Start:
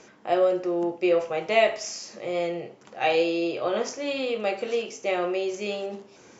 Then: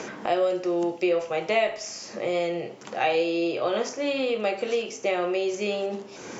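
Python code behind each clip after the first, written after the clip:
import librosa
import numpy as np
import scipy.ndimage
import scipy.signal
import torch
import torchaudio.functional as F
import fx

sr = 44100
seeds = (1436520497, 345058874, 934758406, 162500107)

y = fx.band_squash(x, sr, depth_pct=70)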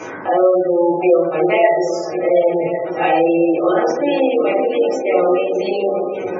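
y = fx.echo_opening(x, sr, ms=367, hz=400, octaves=2, feedback_pct=70, wet_db=-6)
y = fx.rev_fdn(y, sr, rt60_s=0.86, lf_ratio=0.8, hf_ratio=0.4, size_ms=55.0, drr_db=-9.5)
y = fx.spec_gate(y, sr, threshold_db=-25, keep='strong')
y = y * librosa.db_to_amplitude(-1.0)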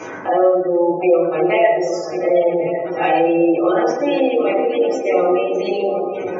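y = x + 10.0 ** (-15.0 / 20.0) * np.pad(x, (int(103 * sr / 1000.0), 0))[:len(x)]
y = fx.rev_plate(y, sr, seeds[0], rt60_s=0.75, hf_ratio=0.7, predelay_ms=90, drr_db=14.0)
y = y * librosa.db_to_amplitude(-1.0)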